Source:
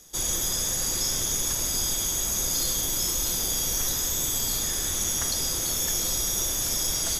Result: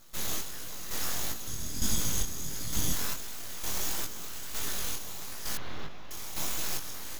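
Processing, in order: 1.46–2.93 resonant low shelf 310 Hz +10.5 dB, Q 1.5; full-wave rectifier; chopper 1.1 Hz, depth 60%, duty 45%; chorus 1.5 Hz, delay 17.5 ms, depth 7.8 ms; 5.57–6.11 air absorption 300 m

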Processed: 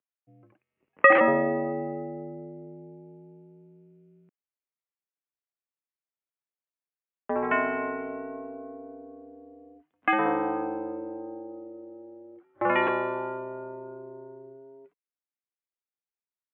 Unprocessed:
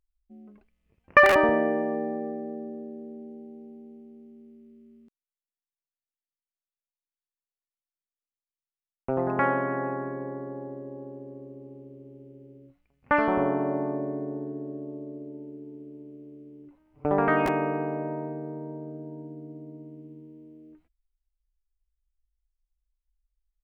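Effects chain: speed glide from 110% -> 176%; mistuned SSB -120 Hz 330–2700 Hz

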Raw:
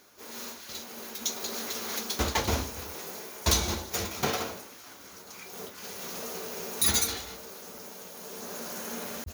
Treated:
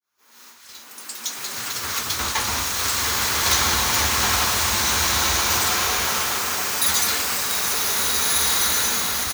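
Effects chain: opening faded in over 2.71 s; in parallel at -0.5 dB: negative-ratio compressor -32 dBFS; on the sum: resonant low shelf 760 Hz -8.5 dB, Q 1.5; on a send: echo 0.688 s -9 dB; on the sum: echoes that change speed 94 ms, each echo +4 st, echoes 3, each echo -6 dB; bloom reverb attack 1.7 s, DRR -5 dB; gain +2 dB

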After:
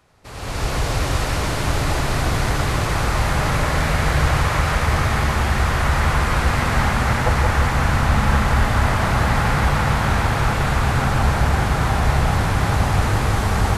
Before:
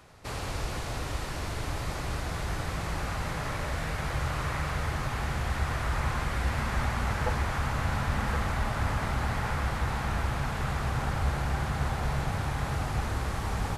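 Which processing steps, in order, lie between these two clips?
AGC gain up to 16 dB; on a send: split-band echo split 1100 Hz, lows 0.174 s, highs 0.287 s, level -3 dB; on the sum: gain -4.5 dB

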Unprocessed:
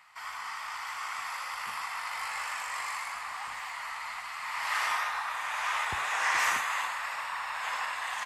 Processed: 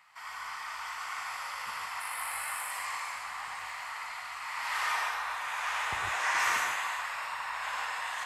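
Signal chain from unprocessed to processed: 2–2.71 resonant high shelf 7900 Hz +8 dB, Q 3; non-linear reverb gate 0.17 s rising, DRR 1 dB; gain -3.5 dB

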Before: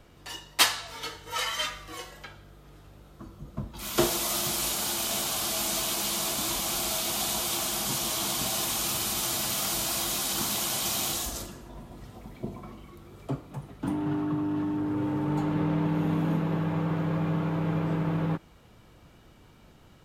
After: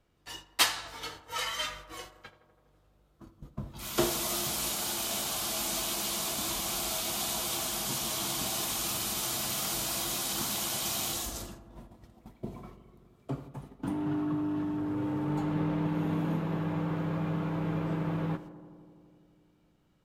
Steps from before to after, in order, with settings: gate -42 dBFS, range -13 dB; on a send: darkening echo 83 ms, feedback 84%, low-pass 2000 Hz, level -15 dB; on the sum: gain -3.5 dB

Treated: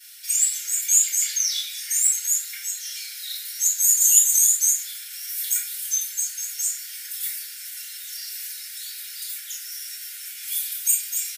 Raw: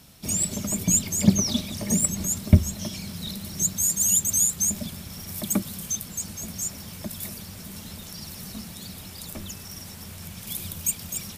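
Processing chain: comb 5.8 ms, depth 41%; shoebox room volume 74 m³, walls mixed, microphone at 4.1 m; in parallel at -0.5 dB: compressor, threshold -31 dBFS, peak gain reduction 32 dB; on the sum: Chebyshev high-pass 1400 Hz, order 10; high shelf 6000 Hz +7 dB; gain -13 dB

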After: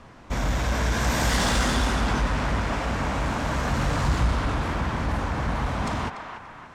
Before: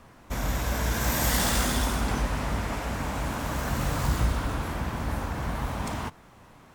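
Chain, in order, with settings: LPF 6400 Hz 12 dB/oct; narrowing echo 0.29 s, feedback 54%, band-pass 1400 Hz, level -6 dB; in parallel at -3 dB: hard clip -27.5 dBFS, distortion -9 dB

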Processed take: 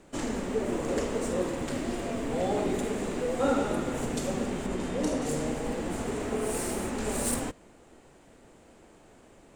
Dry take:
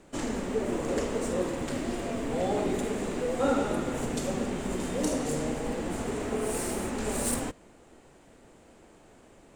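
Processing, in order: 4.66–5.22 high shelf 7700 Hz -11 dB

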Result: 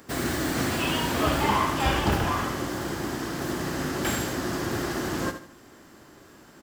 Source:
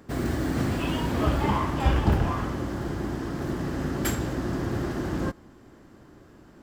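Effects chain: tilt +2.5 dB/oct; on a send: feedback echo 75 ms, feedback 33%, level -10 dB; on the sum: slew limiter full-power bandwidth 120 Hz; gain +3.5 dB

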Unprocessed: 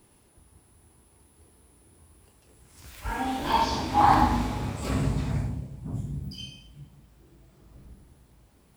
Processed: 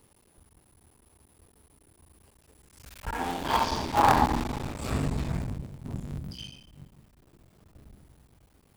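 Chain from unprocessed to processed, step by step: cycle switcher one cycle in 3, muted; de-hum 52.03 Hz, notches 7

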